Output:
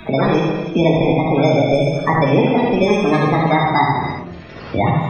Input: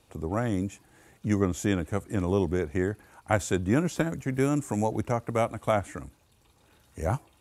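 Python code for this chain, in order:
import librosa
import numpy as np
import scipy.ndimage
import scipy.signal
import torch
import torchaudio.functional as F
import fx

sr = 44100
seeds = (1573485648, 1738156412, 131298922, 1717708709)

p1 = fx.speed_glide(x, sr, from_pct=169, to_pct=122)
p2 = fx.env_lowpass(p1, sr, base_hz=720.0, full_db=-24.0)
p3 = fx.level_steps(p2, sr, step_db=17)
p4 = p2 + (p3 * 10.0 ** (-1.0 / 20.0))
p5 = fx.sample_hold(p4, sr, seeds[0], rate_hz=2900.0, jitter_pct=0)
p6 = fx.dmg_crackle(p5, sr, seeds[1], per_s=190.0, level_db=-33.0)
p7 = fx.spec_topn(p6, sr, count=32)
p8 = p7 + fx.echo_single(p7, sr, ms=74, db=-4.5, dry=0)
p9 = fx.rev_gated(p8, sr, seeds[2], gate_ms=370, shape='falling', drr_db=-1.5)
p10 = fx.band_squash(p9, sr, depth_pct=70)
y = p10 * 10.0 ** (5.5 / 20.0)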